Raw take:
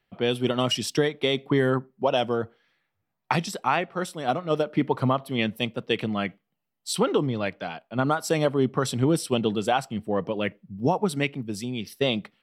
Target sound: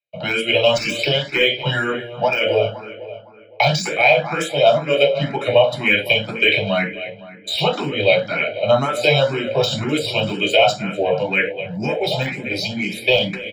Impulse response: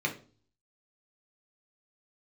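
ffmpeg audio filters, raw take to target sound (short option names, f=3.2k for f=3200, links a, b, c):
-filter_complex "[0:a]agate=range=-33dB:threshold=-52dB:ratio=3:detection=peak,acrossover=split=140|920[a][b][c];[a]aemphasis=mode=production:type=bsi[d];[b]acompressor=threshold=-32dB:ratio=5[e];[d][e][c]amix=inputs=3:normalize=0,asetrate=40517,aresample=44100,equalizer=f=125:t=o:w=1:g=-6,equalizer=f=250:t=o:w=1:g=-10,equalizer=f=500:t=o:w=1:g=11,equalizer=f=1k:t=o:w=1:g=-10,equalizer=f=4k:t=o:w=1:g=7[f];[1:a]atrim=start_sample=2205,afade=t=out:st=0.17:d=0.01,atrim=end_sample=7938[g];[f][g]afir=irnorm=-1:irlink=0,deesser=0.7,aecho=1:1:1.3:0.64,asplit=2[h][i];[i]adelay=255,lowpass=f=3.3k:p=1,volume=-13dB,asplit=2[j][k];[k]adelay=255,lowpass=f=3.3k:p=1,volume=0.53,asplit=2[l][m];[m]adelay=255,lowpass=f=3.3k:p=1,volume=0.53,asplit=2[n][o];[o]adelay=255,lowpass=f=3.3k:p=1,volume=0.53,asplit=2[p][q];[q]adelay=255,lowpass=f=3.3k:p=1,volume=0.53[r];[h][j][l][n][p][r]amix=inputs=6:normalize=0,alimiter=level_in=10.5dB:limit=-1dB:release=50:level=0:latency=1,asplit=2[s][t];[t]afreqshift=2[u];[s][u]amix=inputs=2:normalize=1,volume=-1dB"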